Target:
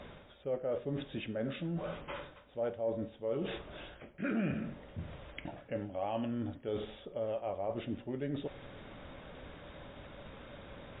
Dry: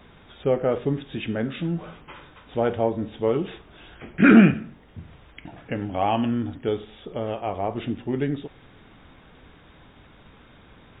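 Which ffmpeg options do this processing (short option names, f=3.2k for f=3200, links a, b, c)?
-af "equalizer=f=570:w=5:g=12,areverse,acompressor=threshold=-36dB:ratio=4,areverse" -ar 48000 -c:a libmp3lame -b:a 40k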